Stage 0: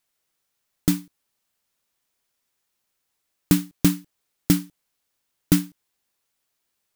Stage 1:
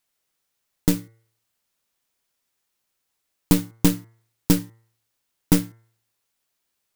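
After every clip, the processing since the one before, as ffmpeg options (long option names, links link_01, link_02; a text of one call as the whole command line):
ffmpeg -i in.wav -af "aeval=exprs='0.708*(cos(1*acos(clip(val(0)/0.708,-1,1)))-cos(1*PI/2))+0.0891*(cos(6*acos(clip(val(0)/0.708,-1,1)))-cos(6*PI/2))':channel_layout=same,bandreject=frequency=113.3:width_type=h:width=4,bandreject=frequency=226.6:width_type=h:width=4,bandreject=frequency=339.9:width_type=h:width=4,bandreject=frequency=453.2:width_type=h:width=4,bandreject=frequency=566.5:width_type=h:width=4,bandreject=frequency=679.8:width_type=h:width=4,bandreject=frequency=793.1:width_type=h:width=4,bandreject=frequency=906.4:width_type=h:width=4,bandreject=frequency=1019.7:width_type=h:width=4,bandreject=frequency=1133:width_type=h:width=4,bandreject=frequency=1246.3:width_type=h:width=4,bandreject=frequency=1359.6:width_type=h:width=4,bandreject=frequency=1472.9:width_type=h:width=4,bandreject=frequency=1586.2:width_type=h:width=4,bandreject=frequency=1699.5:width_type=h:width=4,bandreject=frequency=1812.8:width_type=h:width=4,bandreject=frequency=1926.1:width_type=h:width=4,bandreject=frequency=2039.4:width_type=h:width=4,bandreject=frequency=2152.7:width_type=h:width=4" out.wav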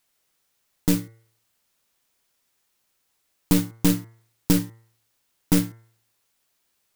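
ffmpeg -i in.wav -af "alimiter=limit=-12dB:level=0:latency=1:release=14,volume=5dB" out.wav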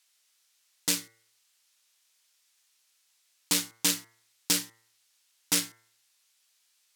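ffmpeg -i in.wav -af "bandpass=frequency=5300:width_type=q:width=0.6:csg=0,volume=6dB" out.wav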